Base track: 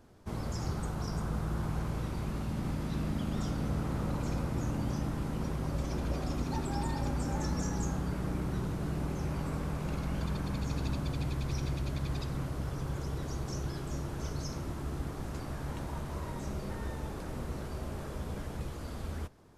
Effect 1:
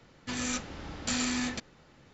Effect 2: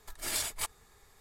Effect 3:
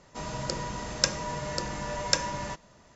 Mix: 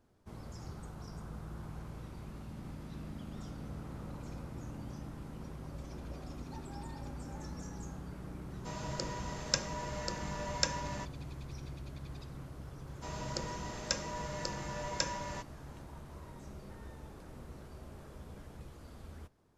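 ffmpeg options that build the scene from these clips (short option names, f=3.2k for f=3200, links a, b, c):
-filter_complex "[3:a]asplit=2[a][b];[0:a]volume=-11dB[c];[b]alimiter=limit=-6dB:level=0:latency=1:release=13[d];[a]atrim=end=2.95,asetpts=PTS-STARTPTS,volume=-6.5dB,afade=t=in:d=0.004:c=hsin,afade=t=out:st=2.946:d=0.004:c=hsin,adelay=374850S[e];[d]atrim=end=2.95,asetpts=PTS-STARTPTS,volume=-6.5dB,afade=t=in:d=0.004:c=hsin,afade=t=out:st=2.946:d=0.004:c=hsin,adelay=12870[f];[c][e][f]amix=inputs=3:normalize=0"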